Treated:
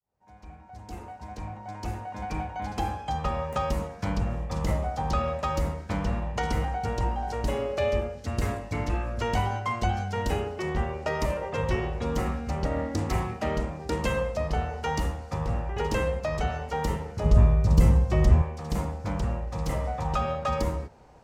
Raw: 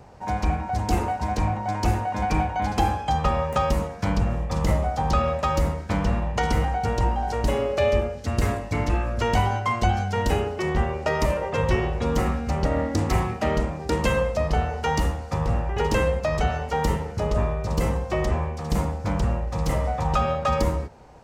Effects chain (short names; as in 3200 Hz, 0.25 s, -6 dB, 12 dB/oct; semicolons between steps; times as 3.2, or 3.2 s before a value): opening faded in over 3.85 s; 17.24–18.42 tone controls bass +12 dB, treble +3 dB; gain -5 dB